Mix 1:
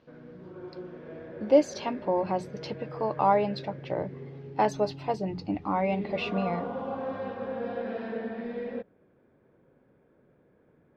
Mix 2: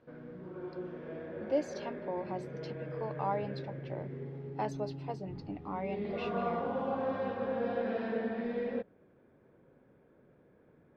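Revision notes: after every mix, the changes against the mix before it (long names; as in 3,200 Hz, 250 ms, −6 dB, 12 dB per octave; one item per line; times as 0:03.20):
speech −11.0 dB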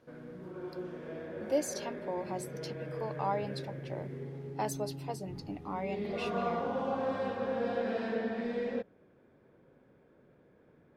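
master: remove high-frequency loss of the air 210 metres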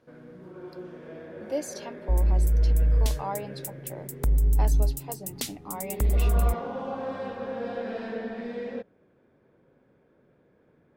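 second sound: unmuted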